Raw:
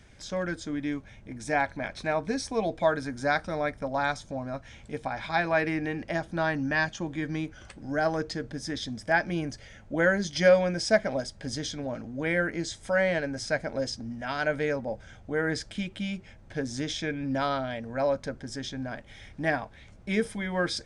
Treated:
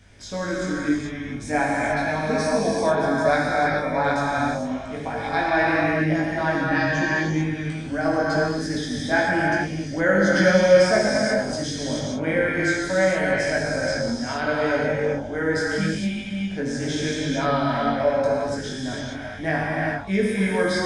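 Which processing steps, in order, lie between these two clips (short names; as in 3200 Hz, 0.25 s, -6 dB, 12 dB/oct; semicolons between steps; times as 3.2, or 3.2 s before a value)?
non-linear reverb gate 0.47 s flat, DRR -5 dB; chorus 0.81 Hz, delay 19 ms, depth 2.1 ms; dynamic EQ 3600 Hz, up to -3 dB, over -43 dBFS, Q 0.92; gain +4.5 dB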